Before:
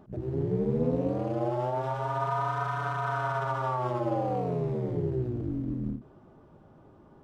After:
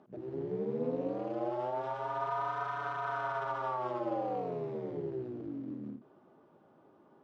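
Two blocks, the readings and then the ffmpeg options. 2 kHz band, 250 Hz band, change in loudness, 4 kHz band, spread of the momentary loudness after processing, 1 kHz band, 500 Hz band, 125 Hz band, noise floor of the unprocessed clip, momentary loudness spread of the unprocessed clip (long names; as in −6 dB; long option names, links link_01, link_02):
−4.5 dB, −7.5 dB, −6.0 dB, −5.5 dB, 7 LU, −4.5 dB, −5.0 dB, −15.5 dB, −56 dBFS, 5 LU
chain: -af "highpass=250,lowpass=5000,volume=-4.5dB"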